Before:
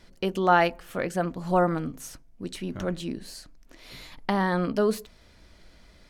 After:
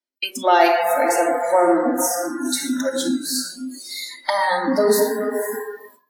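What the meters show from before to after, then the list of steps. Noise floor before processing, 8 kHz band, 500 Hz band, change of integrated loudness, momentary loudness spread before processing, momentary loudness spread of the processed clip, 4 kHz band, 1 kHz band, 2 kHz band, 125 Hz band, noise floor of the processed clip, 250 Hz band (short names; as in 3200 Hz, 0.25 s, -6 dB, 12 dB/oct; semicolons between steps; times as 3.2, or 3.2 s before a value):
-55 dBFS, +19.0 dB, +9.5 dB, +7.0 dB, 21 LU, 13 LU, +12.5 dB, +8.0 dB, +7.0 dB, under -10 dB, -62 dBFS, +6.5 dB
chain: high shelf 5500 Hz +12 dB; on a send: diffused feedback echo 0.501 s, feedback 42%, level -10 dB; on the sum: soft clip -12.5 dBFS, distortion -18 dB; shoebox room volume 3300 m³, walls mixed, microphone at 2.7 m; spectral noise reduction 29 dB; in parallel at +3 dB: compressor, threshold -29 dBFS, peak gain reduction 14 dB; on the sum: elliptic high-pass 240 Hz, stop band 40 dB; gate with hold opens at -37 dBFS; dynamic EQ 1400 Hz, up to -6 dB, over -36 dBFS, Q 1.5; gain +4.5 dB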